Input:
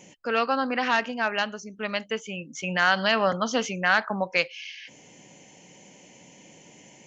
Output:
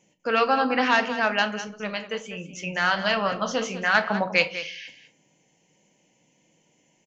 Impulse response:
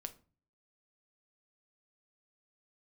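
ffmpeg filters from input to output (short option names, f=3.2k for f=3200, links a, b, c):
-filter_complex "[0:a]agate=range=-17dB:threshold=-44dB:ratio=16:detection=peak,asettb=1/sr,asplit=3[a][b][c];[a]atrim=end=1.674[d];[b]atrim=start=1.67:end=3.95,asetpts=PTS-STARTPTS,afade=t=in:d=0.004:c=qsin,afade=t=out:st=2.276:d=0.004:c=qsin,flanger=delay=5.6:depth=8.1:regen=60:speed=1.3:shape=sinusoidal[e];[c]atrim=start=3.946[f];[d][e]acrossfade=d=0.004:c1=hsin:c2=qsin[g];[g][f]acrossfade=d=0.004:c1=qsin:c2=hsin,aecho=1:1:197:0.237[h];[1:a]atrim=start_sample=2205[i];[h][i]afir=irnorm=-1:irlink=0,volume=6.5dB"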